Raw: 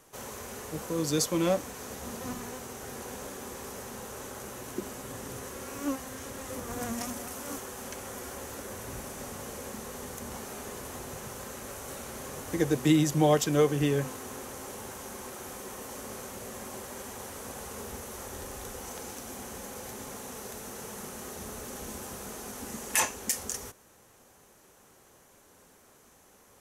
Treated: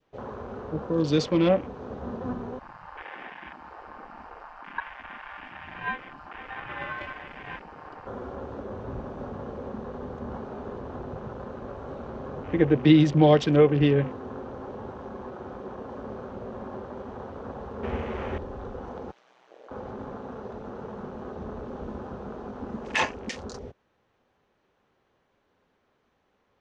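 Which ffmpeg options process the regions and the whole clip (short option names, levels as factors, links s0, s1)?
-filter_complex "[0:a]asettb=1/sr,asplit=3[s0][s1][s2];[s0]atrim=end=2.594[s3];[s1]atrim=start=2.59:end=8.07,asetpts=PTS-STARTPTS,afade=t=in:d=0.004:c=qsin,afade=t=out:st=5.476:d=0.004:c=qsin,asuperstop=centerf=2600:order=12:qfactor=1.5,aeval=exprs='val(0)*sin(2*PI*1300*n/s)':c=same[s4];[s2]atrim=start=8.066[s5];[s3][s4]acrossfade=d=0.004:c1=hsin:c2=qsin[s6];[s6][s5]acrossfade=d=0.004:c1=qsin:c2=hsin,asettb=1/sr,asplit=3[s7][s8][s9];[s7]atrim=end=17.834[s10];[s8]atrim=start=17.83:end=18.38,asetpts=PTS-STARTPTS,afade=t=in:d=0.004:c=qsin,afade=t=out:st=0.546:d=0.004:c=qsin,acontrast=32,acrusher=bits=8:dc=4:mix=0:aa=0.000001,asplit=2[s11][s12];[s12]adelay=13,volume=0.335[s13];[s11][s13]amix=inputs=2:normalize=0,atrim=end_sample=24255[s14];[s9]atrim=start=18.376[s15];[s10][s14]acrossfade=d=0.004:c1=hsin:c2=qsin[s16];[s16][s15]acrossfade=d=0.004:c1=qsin:c2=hsin,asettb=1/sr,asplit=3[s17][s18][s19];[s17]atrim=end=19.114[s20];[s18]atrim=start=19.11:end=19.71,asetpts=PTS-STARTPTS,afade=t=in:d=0.004:c=qsin,afade=t=out:st=0.596:d=0.004:c=qsin,highpass=590,aeval=exprs='val(0)*sin(2*PI*62*n/s)':c=same[s21];[s19]atrim=start=19.706[s22];[s20][s21]acrossfade=d=0.004:c1=hsin:c2=qsin[s23];[s23][s22]acrossfade=d=0.004:c1=qsin:c2=hsin,afwtdn=0.00794,lowpass=f=3900:w=0.5412,lowpass=f=3900:w=1.3066,adynamicequalizer=threshold=0.00355:dfrequency=1200:dqfactor=0.9:tfrequency=1200:tqfactor=0.9:attack=5:release=100:ratio=0.375:range=2.5:mode=cutabove:tftype=bell,volume=2.11"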